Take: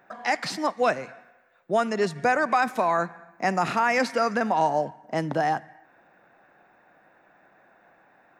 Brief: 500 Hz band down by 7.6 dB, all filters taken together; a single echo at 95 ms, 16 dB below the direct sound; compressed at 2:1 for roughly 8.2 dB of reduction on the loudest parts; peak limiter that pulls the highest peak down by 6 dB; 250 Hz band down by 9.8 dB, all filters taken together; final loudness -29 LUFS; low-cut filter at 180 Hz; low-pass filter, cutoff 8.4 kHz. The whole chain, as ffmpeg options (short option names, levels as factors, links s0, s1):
-af "highpass=180,lowpass=8400,equalizer=f=250:t=o:g=-8.5,equalizer=f=500:t=o:g=-8.5,acompressor=threshold=0.0158:ratio=2,alimiter=level_in=1.33:limit=0.0631:level=0:latency=1,volume=0.75,aecho=1:1:95:0.158,volume=2.66"